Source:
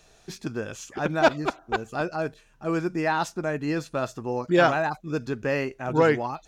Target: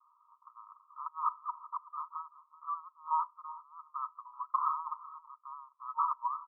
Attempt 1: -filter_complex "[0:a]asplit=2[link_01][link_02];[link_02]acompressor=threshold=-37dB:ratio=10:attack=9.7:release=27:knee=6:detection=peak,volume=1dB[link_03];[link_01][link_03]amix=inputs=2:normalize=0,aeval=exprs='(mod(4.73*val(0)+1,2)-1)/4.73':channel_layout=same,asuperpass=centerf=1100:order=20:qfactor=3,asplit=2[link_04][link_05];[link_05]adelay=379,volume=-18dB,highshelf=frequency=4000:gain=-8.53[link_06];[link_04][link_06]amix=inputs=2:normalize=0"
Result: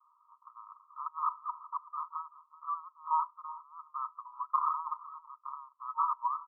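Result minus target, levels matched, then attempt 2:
downward compressor: peak gain reduction −10.5 dB
-filter_complex "[0:a]asplit=2[link_01][link_02];[link_02]acompressor=threshold=-48.5dB:ratio=10:attack=9.7:release=27:knee=6:detection=peak,volume=1dB[link_03];[link_01][link_03]amix=inputs=2:normalize=0,aeval=exprs='(mod(4.73*val(0)+1,2)-1)/4.73':channel_layout=same,asuperpass=centerf=1100:order=20:qfactor=3,asplit=2[link_04][link_05];[link_05]adelay=379,volume=-18dB,highshelf=frequency=4000:gain=-8.53[link_06];[link_04][link_06]amix=inputs=2:normalize=0"

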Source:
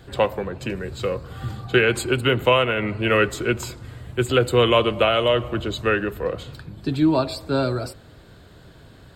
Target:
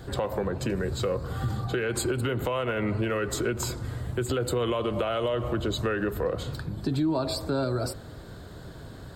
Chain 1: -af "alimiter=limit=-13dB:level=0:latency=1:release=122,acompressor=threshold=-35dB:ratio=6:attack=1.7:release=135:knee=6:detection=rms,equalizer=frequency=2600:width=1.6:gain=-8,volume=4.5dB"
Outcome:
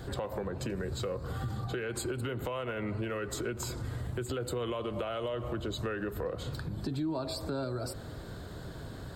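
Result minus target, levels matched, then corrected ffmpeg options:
downward compressor: peak gain reduction +7.5 dB
-af "alimiter=limit=-13dB:level=0:latency=1:release=122,acompressor=threshold=-26dB:ratio=6:attack=1.7:release=135:knee=6:detection=rms,equalizer=frequency=2600:width=1.6:gain=-8,volume=4.5dB"

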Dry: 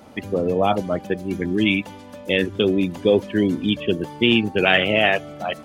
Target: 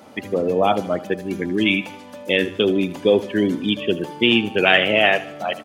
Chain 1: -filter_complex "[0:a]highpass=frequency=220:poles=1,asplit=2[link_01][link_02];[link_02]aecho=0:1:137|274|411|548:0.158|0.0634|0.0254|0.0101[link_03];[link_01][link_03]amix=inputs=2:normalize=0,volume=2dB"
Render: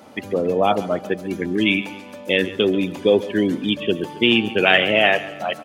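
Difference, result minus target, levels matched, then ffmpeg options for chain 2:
echo 60 ms late
-filter_complex "[0:a]highpass=frequency=220:poles=1,asplit=2[link_01][link_02];[link_02]aecho=0:1:77|154|231|308:0.158|0.0634|0.0254|0.0101[link_03];[link_01][link_03]amix=inputs=2:normalize=0,volume=2dB"

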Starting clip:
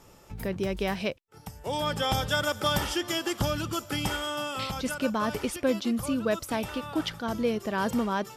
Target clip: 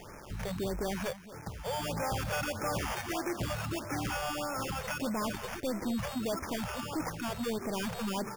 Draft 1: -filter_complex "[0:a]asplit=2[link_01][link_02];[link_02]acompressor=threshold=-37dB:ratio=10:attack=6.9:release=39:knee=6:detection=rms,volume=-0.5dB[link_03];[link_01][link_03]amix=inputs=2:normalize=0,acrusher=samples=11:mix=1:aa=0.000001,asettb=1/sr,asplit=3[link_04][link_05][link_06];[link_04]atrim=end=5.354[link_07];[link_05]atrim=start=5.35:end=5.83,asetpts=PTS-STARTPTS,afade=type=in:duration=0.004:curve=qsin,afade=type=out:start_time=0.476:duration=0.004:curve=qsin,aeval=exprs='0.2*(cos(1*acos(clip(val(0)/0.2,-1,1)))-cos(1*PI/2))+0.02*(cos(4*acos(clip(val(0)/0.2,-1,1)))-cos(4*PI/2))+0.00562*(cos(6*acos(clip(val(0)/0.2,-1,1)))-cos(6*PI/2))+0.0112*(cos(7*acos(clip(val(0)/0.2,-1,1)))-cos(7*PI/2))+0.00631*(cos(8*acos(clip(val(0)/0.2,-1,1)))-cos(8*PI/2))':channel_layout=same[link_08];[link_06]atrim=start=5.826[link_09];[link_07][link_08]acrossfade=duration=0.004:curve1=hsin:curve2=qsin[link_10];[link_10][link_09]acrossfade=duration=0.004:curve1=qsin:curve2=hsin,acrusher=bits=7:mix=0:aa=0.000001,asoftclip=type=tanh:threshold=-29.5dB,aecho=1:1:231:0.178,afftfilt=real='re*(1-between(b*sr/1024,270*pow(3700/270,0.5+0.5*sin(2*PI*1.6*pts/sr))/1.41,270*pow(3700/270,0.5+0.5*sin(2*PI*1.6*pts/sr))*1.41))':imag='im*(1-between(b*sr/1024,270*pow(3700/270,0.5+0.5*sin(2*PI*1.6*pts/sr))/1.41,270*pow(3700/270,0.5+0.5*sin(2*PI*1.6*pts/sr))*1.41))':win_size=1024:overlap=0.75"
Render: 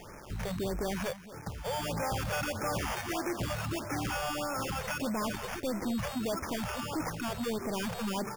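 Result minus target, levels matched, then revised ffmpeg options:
downward compressor: peak gain reduction −10 dB
-filter_complex "[0:a]asplit=2[link_01][link_02];[link_02]acompressor=threshold=-48dB:ratio=10:attack=6.9:release=39:knee=6:detection=rms,volume=-0.5dB[link_03];[link_01][link_03]amix=inputs=2:normalize=0,acrusher=samples=11:mix=1:aa=0.000001,asettb=1/sr,asplit=3[link_04][link_05][link_06];[link_04]atrim=end=5.354[link_07];[link_05]atrim=start=5.35:end=5.83,asetpts=PTS-STARTPTS,afade=type=in:duration=0.004:curve=qsin,afade=type=out:start_time=0.476:duration=0.004:curve=qsin,aeval=exprs='0.2*(cos(1*acos(clip(val(0)/0.2,-1,1)))-cos(1*PI/2))+0.02*(cos(4*acos(clip(val(0)/0.2,-1,1)))-cos(4*PI/2))+0.00562*(cos(6*acos(clip(val(0)/0.2,-1,1)))-cos(6*PI/2))+0.0112*(cos(7*acos(clip(val(0)/0.2,-1,1)))-cos(7*PI/2))+0.00631*(cos(8*acos(clip(val(0)/0.2,-1,1)))-cos(8*PI/2))':channel_layout=same[link_08];[link_06]atrim=start=5.826[link_09];[link_07][link_08]acrossfade=duration=0.004:curve1=hsin:curve2=qsin[link_10];[link_10][link_09]acrossfade=duration=0.004:curve1=qsin:curve2=hsin,acrusher=bits=7:mix=0:aa=0.000001,asoftclip=type=tanh:threshold=-29.5dB,aecho=1:1:231:0.178,afftfilt=real='re*(1-between(b*sr/1024,270*pow(3700/270,0.5+0.5*sin(2*PI*1.6*pts/sr))/1.41,270*pow(3700/270,0.5+0.5*sin(2*PI*1.6*pts/sr))*1.41))':imag='im*(1-between(b*sr/1024,270*pow(3700/270,0.5+0.5*sin(2*PI*1.6*pts/sr))/1.41,270*pow(3700/270,0.5+0.5*sin(2*PI*1.6*pts/sr))*1.41))':win_size=1024:overlap=0.75"

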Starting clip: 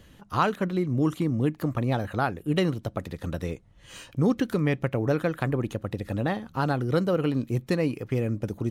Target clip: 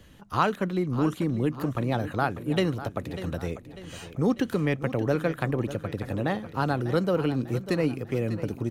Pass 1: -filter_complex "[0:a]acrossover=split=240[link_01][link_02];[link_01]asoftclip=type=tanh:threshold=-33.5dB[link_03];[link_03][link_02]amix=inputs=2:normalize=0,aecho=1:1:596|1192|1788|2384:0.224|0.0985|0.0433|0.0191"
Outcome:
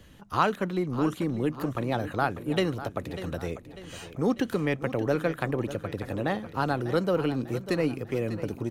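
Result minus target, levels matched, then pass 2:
soft clipping: distortion +8 dB
-filter_complex "[0:a]acrossover=split=240[link_01][link_02];[link_01]asoftclip=type=tanh:threshold=-25.5dB[link_03];[link_03][link_02]amix=inputs=2:normalize=0,aecho=1:1:596|1192|1788|2384:0.224|0.0985|0.0433|0.0191"

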